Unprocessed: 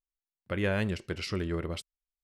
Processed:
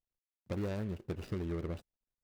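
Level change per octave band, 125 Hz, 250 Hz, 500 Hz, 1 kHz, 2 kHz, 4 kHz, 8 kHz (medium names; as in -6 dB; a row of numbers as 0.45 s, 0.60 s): -4.5 dB, -5.0 dB, -7.0 dB, -8.5 dB, -16.5 dB, -16.0 dB, -13.5 dB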